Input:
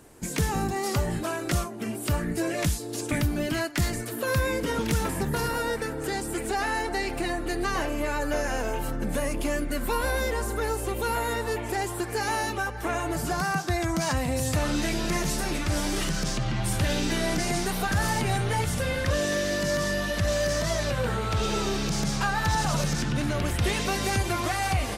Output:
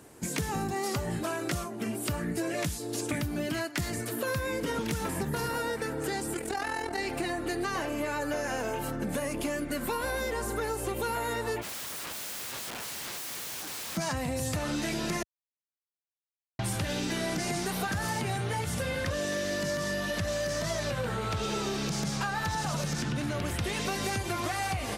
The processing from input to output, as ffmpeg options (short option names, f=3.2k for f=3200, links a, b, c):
-filter_complex "[0:a]asettb=1/sr,asplit=3[a][b][c];[a]atrim=end=6.344[d];[b]atrim=start=6.34:end=6.99,asetpts=PTS-STARTPTS,afade=t=in:d=0.004:c=qsin,afade=t=out:st=0.646:d=0.004:c=qsin,tremolo=f=42:d=0.71[e];[c]atrim=start=6.986[f];[d][e]acrossfade=d=0.004:c1=hsin:c2=qsin[g];[g][f]acrossfade=d=0.004:c1=qsin:c2=hsin,asplit=3[h][i][j];[h]afade=t=out:st=11.61:d=0.02[k];[i]aeval=exprs='(mod(47.3*val(0)+1,2)-1)/47.3':c=same,afade=t=in:st=11.61:d=0.02,afade=t=out:st=13.96:d=0.02[l];[j]afade=t=in:st=13.96:d=0.02[m];[k][l][m]amix=inputs=3:normalize=0,asplit=3[n][o][p];[n]atrim=end=15.23,asetpts=PTS-STARTPTS,afade=t=out:st=15.226:d=0.004:c=hsin[q];[o]atrim=start=15.23:end=16.59,asetpts=PTS-STARTPTS,volume=0[r];[p]atrim=start=16.59,asetpts=PTS-STARTPTS,afade=t=in:d=0.004:c=hsin[s];[q][r][s]concat=n=3:v=0:a=1,highpass=78,acompressor=threshold=-28dB:ratio=6"